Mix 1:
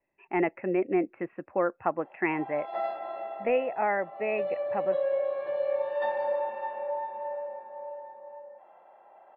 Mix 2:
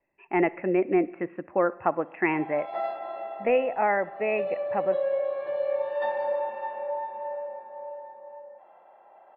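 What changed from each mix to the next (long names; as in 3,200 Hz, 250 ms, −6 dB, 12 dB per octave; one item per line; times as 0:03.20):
reverb: on, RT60 0.90 s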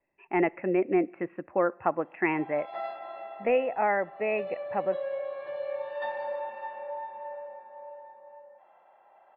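speech: send −8.5 dB
background: add parametric band 370 Hz −7.5 dB 2.9 octaves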